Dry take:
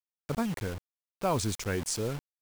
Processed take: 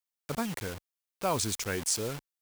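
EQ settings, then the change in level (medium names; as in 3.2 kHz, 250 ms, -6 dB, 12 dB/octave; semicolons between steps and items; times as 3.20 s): tilt EQ +1.5 dB/octave; 0.0 dB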